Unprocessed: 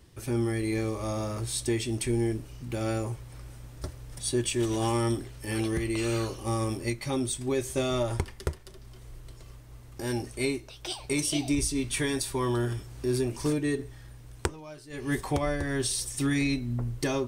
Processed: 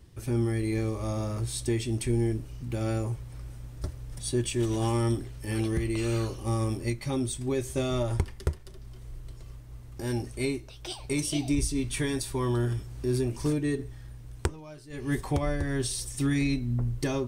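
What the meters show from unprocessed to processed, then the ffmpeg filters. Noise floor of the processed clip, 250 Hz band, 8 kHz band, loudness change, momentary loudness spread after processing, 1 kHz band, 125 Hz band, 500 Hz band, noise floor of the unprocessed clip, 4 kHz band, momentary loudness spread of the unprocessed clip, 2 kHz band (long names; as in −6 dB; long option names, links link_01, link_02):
−46 dBFS, 0.0 dB, −3.0 dB, 0.0 dB, 15 LU, −2.5 dB, +3.0 dB, −1.0 dB, −48 dBFS, −3.0 dB, 18 LU, −3.0 dB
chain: -af "lowshelf=frequency=230:gain=7.5,volume=-3dB"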